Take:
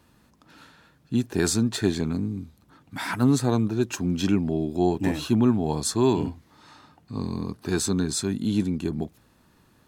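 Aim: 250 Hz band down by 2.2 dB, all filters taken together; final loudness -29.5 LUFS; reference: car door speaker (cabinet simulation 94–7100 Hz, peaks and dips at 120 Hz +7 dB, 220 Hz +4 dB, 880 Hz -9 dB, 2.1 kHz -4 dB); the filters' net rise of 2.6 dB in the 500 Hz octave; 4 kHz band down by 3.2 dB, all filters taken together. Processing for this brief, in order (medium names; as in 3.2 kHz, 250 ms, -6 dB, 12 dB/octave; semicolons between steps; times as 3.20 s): cabinet simulation 94–7100 Hz, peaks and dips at 120 Hz +7 dB, 220 Hz +4 dB, 880 Hz -9 dB, 2.1 kHz -4 dB; peaking EQ 250 Hz -7.5 dB; peaking EQ 500 Hz +8 dB; peaking EQ 4 kHz -3.5 dB; trim -3.5 dB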